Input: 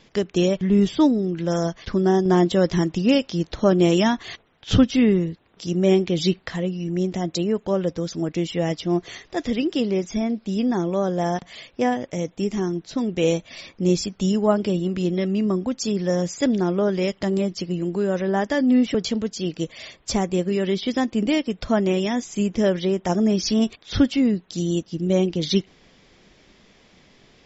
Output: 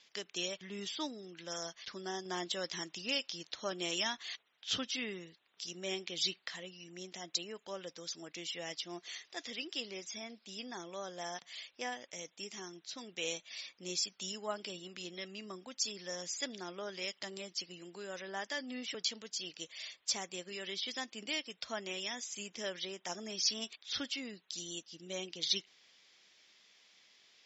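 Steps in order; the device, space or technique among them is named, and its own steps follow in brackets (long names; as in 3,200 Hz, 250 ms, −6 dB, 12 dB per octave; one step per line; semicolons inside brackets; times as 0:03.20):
piezo pickup straight into a mixer (low-pass filter 5,300 Hz 12 dB per octave; first difference)
level +1.5 dB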